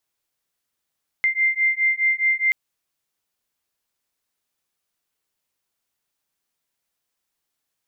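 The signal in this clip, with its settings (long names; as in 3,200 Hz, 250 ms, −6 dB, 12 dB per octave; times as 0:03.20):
two tones that beat 2,090 Hz, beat 4.8 Hz, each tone −20.5 dBFS 1.28 s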